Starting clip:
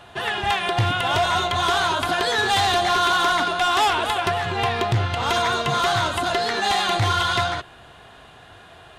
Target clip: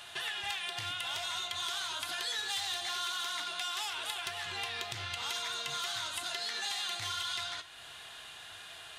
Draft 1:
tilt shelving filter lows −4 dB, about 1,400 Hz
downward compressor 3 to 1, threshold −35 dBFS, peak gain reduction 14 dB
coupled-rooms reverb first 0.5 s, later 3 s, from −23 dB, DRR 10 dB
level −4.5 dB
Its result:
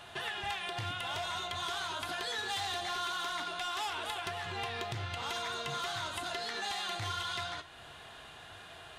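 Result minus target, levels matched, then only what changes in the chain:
1,000 Hz band +5.0 dB
change: tilt shelving filter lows −12 dB, about 1,400 Hz

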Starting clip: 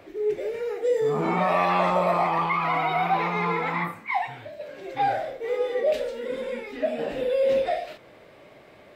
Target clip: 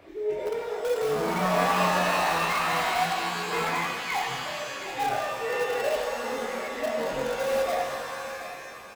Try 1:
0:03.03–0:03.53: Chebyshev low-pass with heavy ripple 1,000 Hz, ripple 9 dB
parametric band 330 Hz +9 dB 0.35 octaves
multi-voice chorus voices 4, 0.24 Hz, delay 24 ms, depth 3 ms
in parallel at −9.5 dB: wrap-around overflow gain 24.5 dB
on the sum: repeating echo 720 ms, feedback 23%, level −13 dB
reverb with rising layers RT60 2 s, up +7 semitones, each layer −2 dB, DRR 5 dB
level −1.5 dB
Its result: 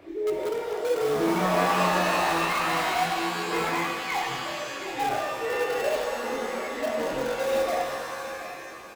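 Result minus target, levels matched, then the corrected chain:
250 Hz band +3.5 dB
0:03.03–0:03.53: Chebyshev low-pass with heavy ripple 1,000 Hz, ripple 9 dB
parametric band 330 Hz −2 dB 0.35 octaves
multi-voice chorus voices 4, 0.24 Hz, delay 24 ms, depth 3 ms
in parallel at −9.5 dB: wrap-around overflow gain 24.5 dB
on the sum: repeating echo 720 ms, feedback 23%, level −13 dB
reverb with rising layers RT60 2 s, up +7 semitones, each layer −2 dB, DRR 5 dB
level −1.5 dB

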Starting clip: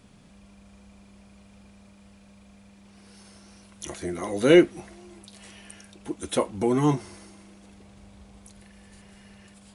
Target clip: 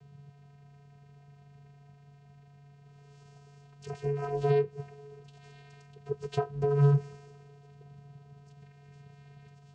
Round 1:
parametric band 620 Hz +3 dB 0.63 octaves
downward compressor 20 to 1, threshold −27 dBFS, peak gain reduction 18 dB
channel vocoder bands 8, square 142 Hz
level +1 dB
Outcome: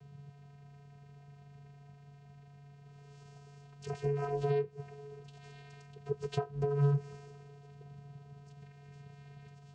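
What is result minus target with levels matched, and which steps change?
downward compressor: peak gain reduction +6 dB
change: downward compressor 20 to 1, threshold −20.5 dBFS, peak gain reduction 12 dB

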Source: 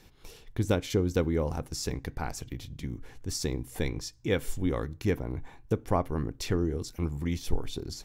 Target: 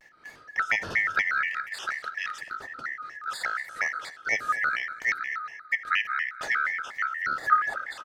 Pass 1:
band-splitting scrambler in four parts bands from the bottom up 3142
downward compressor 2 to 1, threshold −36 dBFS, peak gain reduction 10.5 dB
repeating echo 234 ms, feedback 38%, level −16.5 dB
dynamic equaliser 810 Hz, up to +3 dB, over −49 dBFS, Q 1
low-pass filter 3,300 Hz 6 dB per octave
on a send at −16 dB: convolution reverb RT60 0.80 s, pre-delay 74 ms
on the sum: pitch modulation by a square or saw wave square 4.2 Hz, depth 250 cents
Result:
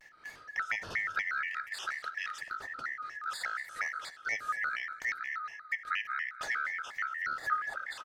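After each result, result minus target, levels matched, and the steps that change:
downward compressor: peak gain reduction +10.5 dB; 250 Hz band −2.5 dB
remove: downward compressor 2 to 1, threshold −36 dBFS, peak gain reduction 10.5 dB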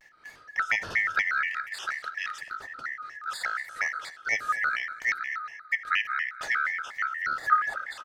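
250 Hz band −4.5 dB
add after low-pass filter: parametric band 280 Hz +5.5 dB 2.8 octaves

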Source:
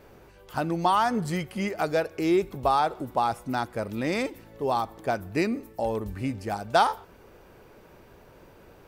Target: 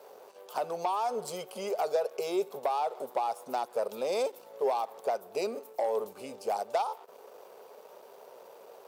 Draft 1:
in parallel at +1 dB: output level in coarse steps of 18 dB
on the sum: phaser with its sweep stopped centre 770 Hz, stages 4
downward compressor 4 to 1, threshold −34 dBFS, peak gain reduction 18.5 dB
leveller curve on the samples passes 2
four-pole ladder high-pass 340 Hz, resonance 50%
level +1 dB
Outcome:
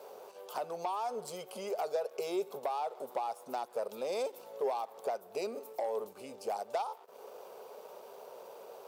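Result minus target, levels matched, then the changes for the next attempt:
downward compressor: peak gain reduction +5 dB
change: downward compressor 4 to 1, threshold −27 dBFS, peak gain reduction 13.5 dB

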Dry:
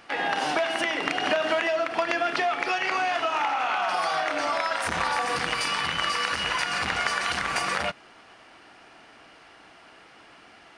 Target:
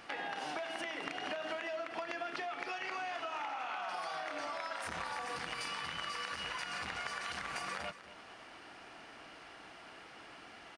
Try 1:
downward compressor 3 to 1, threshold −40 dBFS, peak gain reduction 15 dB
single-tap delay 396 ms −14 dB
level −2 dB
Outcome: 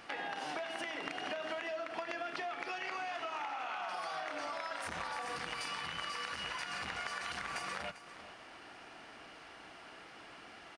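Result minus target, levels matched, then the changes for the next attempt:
echo 160 ms late
change: single-tap delay 236 ms −14 dB

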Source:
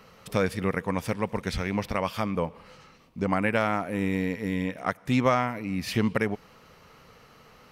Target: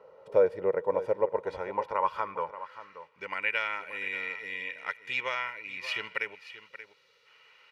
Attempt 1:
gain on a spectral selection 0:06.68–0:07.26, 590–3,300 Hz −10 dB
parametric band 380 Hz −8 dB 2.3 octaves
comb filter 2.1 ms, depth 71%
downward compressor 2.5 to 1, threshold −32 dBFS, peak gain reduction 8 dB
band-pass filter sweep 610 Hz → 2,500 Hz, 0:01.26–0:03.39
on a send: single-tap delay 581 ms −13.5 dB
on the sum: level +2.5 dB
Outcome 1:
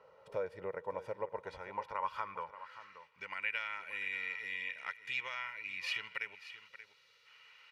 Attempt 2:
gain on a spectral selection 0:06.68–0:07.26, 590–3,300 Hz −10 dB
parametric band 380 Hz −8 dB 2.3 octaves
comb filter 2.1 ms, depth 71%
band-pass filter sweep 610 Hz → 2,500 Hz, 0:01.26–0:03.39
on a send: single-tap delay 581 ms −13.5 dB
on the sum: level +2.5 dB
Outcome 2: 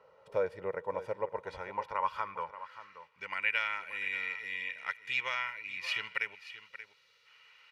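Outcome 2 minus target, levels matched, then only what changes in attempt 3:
500 Hz band −5.0 dB
change: parametric band 380 Hz +2 dB 2.3 octaves

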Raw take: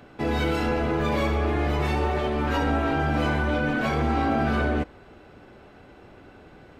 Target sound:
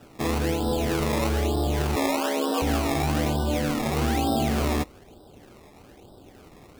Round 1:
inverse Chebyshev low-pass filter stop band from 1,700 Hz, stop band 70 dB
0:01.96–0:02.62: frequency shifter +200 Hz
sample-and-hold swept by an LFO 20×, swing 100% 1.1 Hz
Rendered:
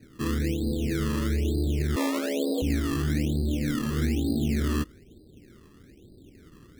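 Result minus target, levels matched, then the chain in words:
4,000 Hz band −3.0 dB
inverse Chebyshev low-pass filter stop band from 4,500 Hz, stop band 70 dB
0:01.96–0:02.62: frequency shifter +200 Hz
sample-and-hold swept by an LFO 20×, swing 100% 1.1 Hz

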